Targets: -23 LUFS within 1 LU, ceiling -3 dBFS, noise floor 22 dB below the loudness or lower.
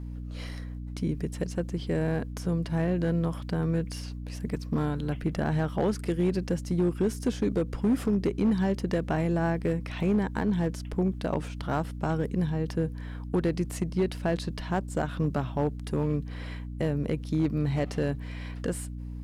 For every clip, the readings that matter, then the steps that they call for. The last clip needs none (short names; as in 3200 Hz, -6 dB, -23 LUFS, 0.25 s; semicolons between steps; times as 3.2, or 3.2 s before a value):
clipped 1.0%; flat tops at -19.0 dBFS; hum 60 Hz; harmonics up to 300 Hz; hum level -35 dBFS; loudness -29.5 LUFS; peak -19.0 dBFS; loudness target -23.0 LUFS
-> clip repair -19 dBFS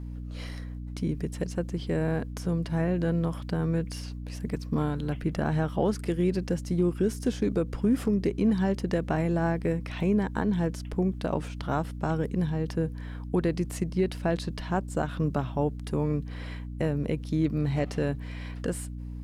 clipped 0.0%; hum 60 Hz; harmonics up to 300 Hz; hum level -35 dBFS
-> notches 60/120/180/240/300 Hz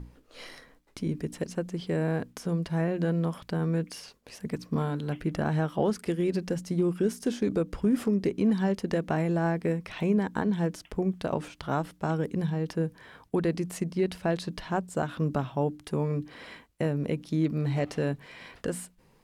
hum none; loudness -30.0 LUFS; peak -14.0 dBFS; loudness target -23.0 LUFS
-> gain +7 dB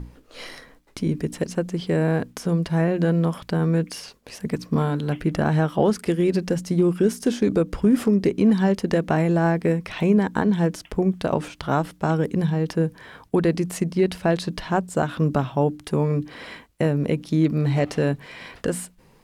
loudness -23.0 LUFS; peak -7.0 dBFS; noise floor -55 dBFS